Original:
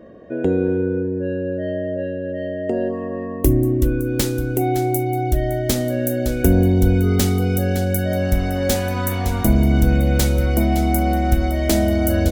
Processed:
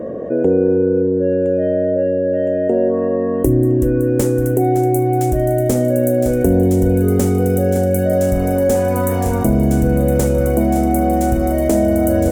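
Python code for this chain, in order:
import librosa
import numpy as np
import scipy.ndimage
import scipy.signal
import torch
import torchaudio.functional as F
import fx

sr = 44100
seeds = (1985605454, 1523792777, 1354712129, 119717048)

p1 = fx.graphic_eq(x, sr, hz=(125, 250, 500, 1000, 4000, 8000), db=(7, 5, 12, 4, -11, 7))
p2 = p1 + fx.echo_wet_highpass(p1, sr, ms=1014, feedback_pct=63, hz=1700.0, wet_db=-6, dry=0)
p3 = fx.env_flatten(p2, sr, amount_pct=50)
y = p3 * librosa.db_to_amplitude(-7.5)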